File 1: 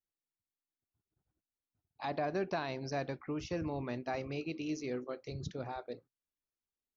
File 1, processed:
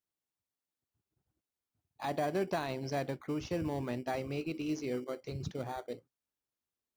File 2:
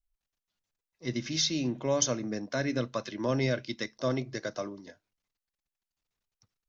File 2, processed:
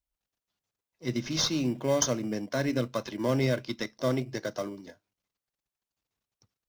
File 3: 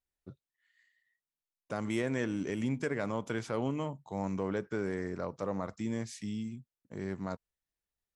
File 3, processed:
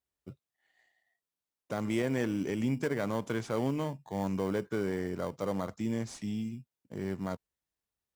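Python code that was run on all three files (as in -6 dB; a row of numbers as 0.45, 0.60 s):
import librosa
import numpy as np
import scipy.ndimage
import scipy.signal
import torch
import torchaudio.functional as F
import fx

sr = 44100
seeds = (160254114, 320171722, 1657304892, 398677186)

p1 = scipy.signal.sosfilt(scipy.signal.butter(2, 54.0, 'highpass', fs=sr, output='sos'), x)
p2 = fx.sample_hold(p1, sr, seeds[0], rate_hz=2600.0, jitter_pct=0)
y = p1 + (p2 * librosa.db_to_amplitude(-10.0))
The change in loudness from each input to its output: +2.0, +1.5, +2.0 LU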